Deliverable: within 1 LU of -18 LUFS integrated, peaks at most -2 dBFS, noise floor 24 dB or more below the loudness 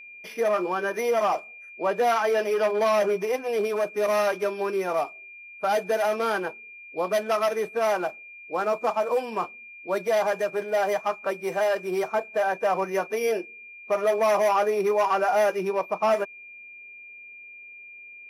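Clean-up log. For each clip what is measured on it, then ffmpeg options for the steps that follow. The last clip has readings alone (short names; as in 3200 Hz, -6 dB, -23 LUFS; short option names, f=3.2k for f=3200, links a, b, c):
steady tone 2400 Hz; tone level -42 dBFS; loudness -25.5 LUFS; peak -14.5 dBFS; loudness target -18.0 LUFS
-> -af "bandreject=f=2.4k:w=30"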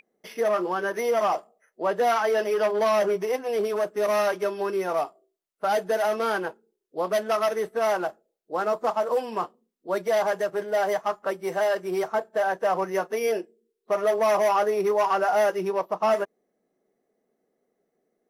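steady tone none; loudness -25.5 LUFS; peak -14.0 dBFS; loudness target -18.0 LUFS
-> -af "volume=7.5dB"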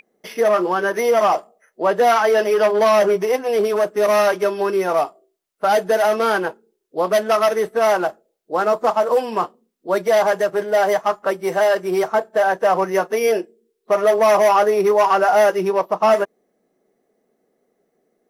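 loudness -18.0 LUFS; peak -6.5 dBFS; noise floor -71 dBFS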